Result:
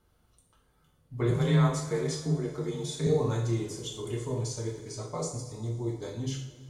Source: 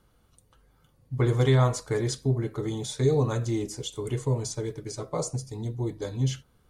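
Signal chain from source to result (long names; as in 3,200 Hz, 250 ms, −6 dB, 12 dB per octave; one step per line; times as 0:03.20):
0:01.30–0:03.07: frequency shifter +26 Hz
coupled-rooms reverb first 0.56 s, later 3.1 s, from −18 dB, DRR −1.5 dB
level −6.5 dB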